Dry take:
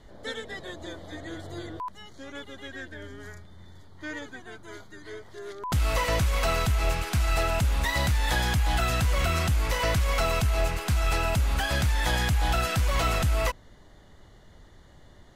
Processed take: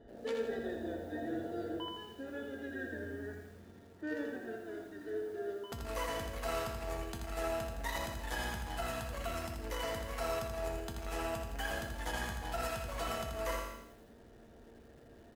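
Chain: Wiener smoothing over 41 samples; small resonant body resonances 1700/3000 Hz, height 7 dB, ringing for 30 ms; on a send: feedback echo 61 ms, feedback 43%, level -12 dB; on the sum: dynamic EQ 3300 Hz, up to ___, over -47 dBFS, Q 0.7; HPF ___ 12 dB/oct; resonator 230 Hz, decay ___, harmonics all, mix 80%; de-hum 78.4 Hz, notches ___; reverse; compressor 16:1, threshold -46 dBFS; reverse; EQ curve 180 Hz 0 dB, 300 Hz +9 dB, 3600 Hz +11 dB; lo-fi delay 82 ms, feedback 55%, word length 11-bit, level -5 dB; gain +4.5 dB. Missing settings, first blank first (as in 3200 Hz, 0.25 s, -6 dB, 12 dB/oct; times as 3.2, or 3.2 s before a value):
-8 dB, 42 Hz, 0.2 s, 3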